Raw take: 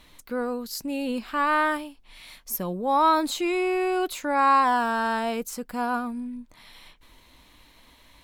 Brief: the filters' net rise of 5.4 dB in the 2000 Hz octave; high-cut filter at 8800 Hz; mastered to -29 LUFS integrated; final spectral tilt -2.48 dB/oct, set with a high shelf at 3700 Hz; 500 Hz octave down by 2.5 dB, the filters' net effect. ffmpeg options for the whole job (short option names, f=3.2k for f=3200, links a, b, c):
-af "lowpass=8.8k,equalizer=f=500:t=o:g=-4,equalizer=f=2k:t=o:g=6,highshelf=f=3.7k:g=6.5,volume=-5.5dB"